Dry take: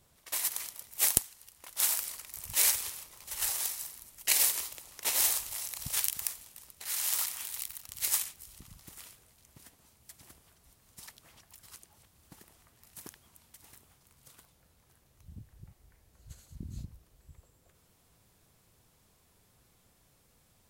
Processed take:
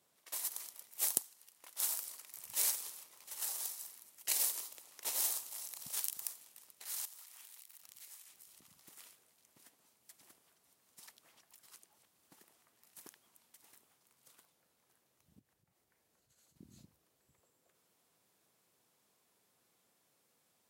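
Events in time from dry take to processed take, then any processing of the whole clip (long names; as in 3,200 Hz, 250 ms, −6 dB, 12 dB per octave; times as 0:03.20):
0:07.05–0:08.72: downward compressor 8 to 1, threshold −44 dBFS
0:15.39–0:16.56: downward compressor 2 to 1, threshold −60 dBFS
whole clip: high-pass filter 250 Hz 12 dB per octave; dynamic equaliser 2,200 Hz, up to −6 dB, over −51 dBFS, Q 1; level −7 dB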